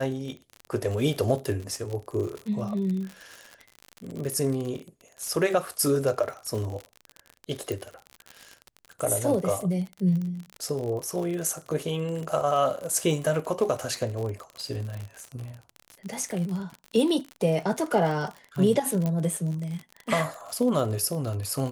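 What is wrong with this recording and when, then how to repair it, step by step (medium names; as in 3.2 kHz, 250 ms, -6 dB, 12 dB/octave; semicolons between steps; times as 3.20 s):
crackle 52 per s -31 dBFS
7.72 s: pop
19.06 s: pop -16 dBFS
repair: de-click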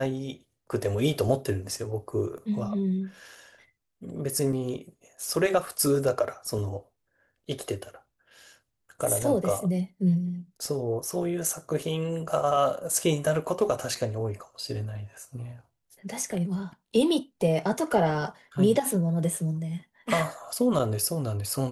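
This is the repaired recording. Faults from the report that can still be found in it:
7.72 s: pop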